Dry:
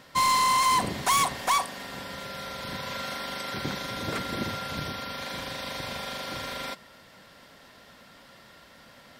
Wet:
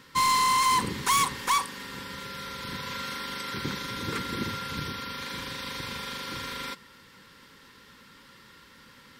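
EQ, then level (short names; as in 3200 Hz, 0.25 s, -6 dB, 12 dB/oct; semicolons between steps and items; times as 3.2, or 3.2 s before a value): Butterworth band-stop 670 Hz, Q 1.8; 0.0 dB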